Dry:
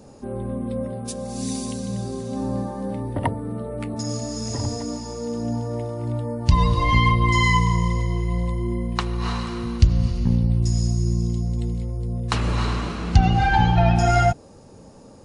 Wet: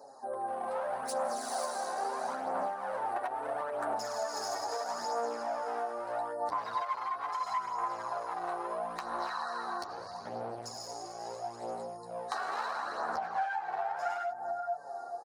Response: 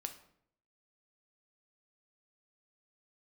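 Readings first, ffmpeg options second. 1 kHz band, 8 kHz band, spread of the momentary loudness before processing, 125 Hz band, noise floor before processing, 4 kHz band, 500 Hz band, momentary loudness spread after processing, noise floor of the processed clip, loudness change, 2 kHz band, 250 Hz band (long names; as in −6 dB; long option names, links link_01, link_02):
−6.5 dB, −10.0 dB, 12 LU, −39.5 dB, −46 dBFS, −13.5 dB, −6.5 dB, 6 LU, −45 dBFS, −13.0 dB, −12.5 dB, −24.5 dB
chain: -filter_complex "[0:a]afftfilt=real='re*(1-between(b*sr/4096,1900,3800))':imag='im*(1-between(b*sr/4096,1900,3800))':win_size=4096:overlap=0.75,aeval=exprs='val(0)+0.002*(sin(2*PI*50*n/s)+sin(2*PI*2*50*n/s)/2+sin(2*PI*3*50*n/s)/3+sin(2*PI*4*50*n/s)/4+sin(2*PI*5*50*n/s)/5)':channel_layout=same,dynaudnorm=framelen=160:gausssize=11:maxgain=13dB,equalizer=frequency=6800:width=1.7:gain=-4.5,alimiter=limit=-11dB:level=0:latency=1:release=103,asplit=2[link_01][link_02];[link_02]adelay=433,lowpass=frequency=930:poles=1,volume=-7.5dB,asplit=2[link_03][link_04];[link_04]adelay=433,lowpass=frequency=930:poles=1,volume=0.3,asplit=2[link_05][link_06];[link_06]adelay=433,lowpass=frequency=930:poles=1,volume=0.3,asplit=2[link_07][link_08];[link_08]adelay=433,lowpass=frequency=930:poles=1,volume=0.3[link_09];[link_01][link_03][link_05][link_07][link_09]amix=inputs=5:normalize=0,volume=19dB,asoftclip=hard,volume=-19dB,highpass=frequency=730:width_type=q:width=3.5,adynamicequalizer=threshold=0.01:dfrequency=1500:dqfactor=2.3:tfrequency=1500:tqfactor=2.3:attack=5:release=100:ratio=0.375:range=3.5:mode=boostabove:tftype=bell,flanger=delay=6.7:depth=7.2:regen=-3:speed=0.27:shape=triangular,acompressor=threshold=-29dB:ratio=12,flanger=delay=0.1:depth=2.6:regen=33:speed=0.76:shape=sinusoidal,volume=1.5dB"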